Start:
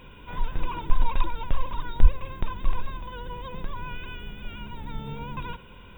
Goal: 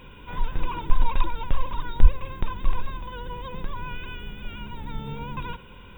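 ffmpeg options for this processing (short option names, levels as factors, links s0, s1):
-af "bandreject=f=660:w=12,volume=1.19"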